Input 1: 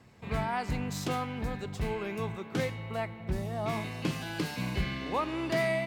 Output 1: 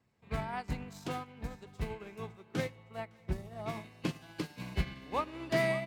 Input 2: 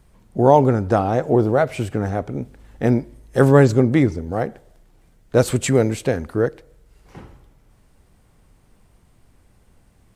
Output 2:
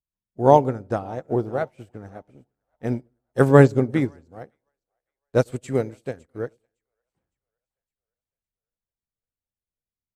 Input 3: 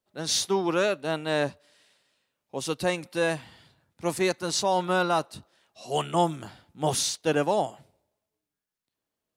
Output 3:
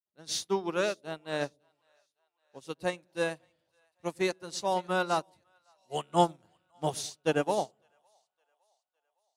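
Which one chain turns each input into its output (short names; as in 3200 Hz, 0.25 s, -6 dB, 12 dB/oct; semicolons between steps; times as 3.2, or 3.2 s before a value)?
split-band echo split 590 Hz, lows 0.106 s, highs 0.56 s, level -14 dB; upward expander 2.5:1, over -38 dBFS; gain +1 dB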